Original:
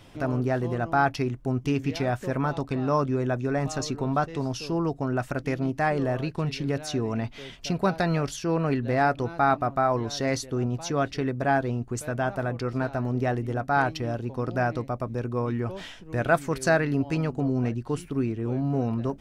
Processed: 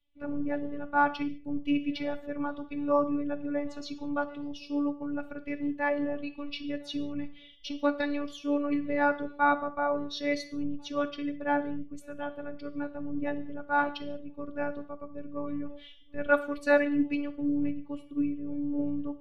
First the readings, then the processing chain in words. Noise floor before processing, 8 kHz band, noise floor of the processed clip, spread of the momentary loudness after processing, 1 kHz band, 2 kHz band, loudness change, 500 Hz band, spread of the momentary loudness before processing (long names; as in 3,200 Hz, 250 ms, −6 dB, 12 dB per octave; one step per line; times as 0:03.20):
−46 dBFS, below −15 dB, −50 dBFS, 12 LU, −4.5 dB, −2.5 dB, −4.5 dB, −5.0 dB, 6 LU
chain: spectral dynamics exaggerated over time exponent 1.5
phases set to zero 289 Hz
high shelf with overshoot 4,900 Hz −12 dB, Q 1.5
reverb whose tail is shaped and stops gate 230 ms falling, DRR 9.5 dB
multiband upward and downward expander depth 40%